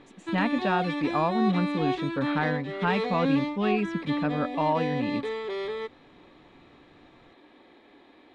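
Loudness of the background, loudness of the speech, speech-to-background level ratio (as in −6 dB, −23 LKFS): −31.0 LKFS, −29.0 LKFS, 2.0 dB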